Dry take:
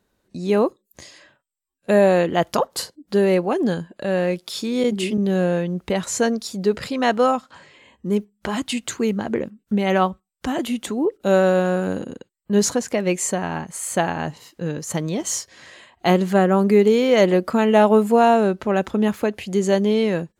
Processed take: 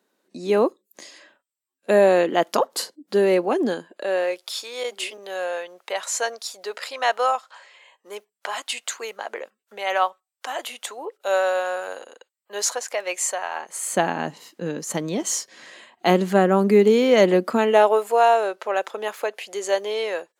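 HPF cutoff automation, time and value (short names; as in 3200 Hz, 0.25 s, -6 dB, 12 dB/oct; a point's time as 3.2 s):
HPF 24 dB/oct
3.63 s 240 Hz
4.58 s 590 Hz
13.53 s 590 Hz
13.98 s 190 Hz
17.46 s 190 Hz
18.01 s 490 Hz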